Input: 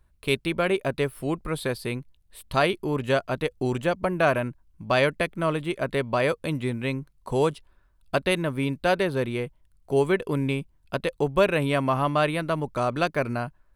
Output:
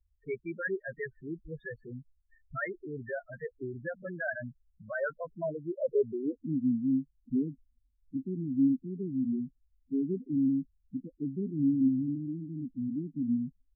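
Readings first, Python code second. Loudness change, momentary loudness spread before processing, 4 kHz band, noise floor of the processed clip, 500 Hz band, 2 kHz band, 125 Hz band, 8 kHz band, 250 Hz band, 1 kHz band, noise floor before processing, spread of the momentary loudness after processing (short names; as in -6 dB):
-7.5 dB, 8 LU, under -40 dB, -73 dBFS, -12.0 dB, -11.5 dB, -11.0 dB, under -35 dB, -1.0 dB, -21.0 dB, -62 dBFS, 13 LU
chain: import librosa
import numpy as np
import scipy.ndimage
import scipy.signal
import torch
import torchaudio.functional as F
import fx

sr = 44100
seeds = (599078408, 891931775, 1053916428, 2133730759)

y = fx.rotary_switch(x, sr, hz=5.5, then_hz=0.65, switch_at_s=6.84)
y = fx.filter_sweep_lowpass(y, sr, from_hz=1800.0, to_hz=260.0, start_s=4.86, end_s=6.41, q=5.8)
y = fx.spec_topn(y, sr, count=4)
y = y * 10.0 ** (-8.5 / 20.0)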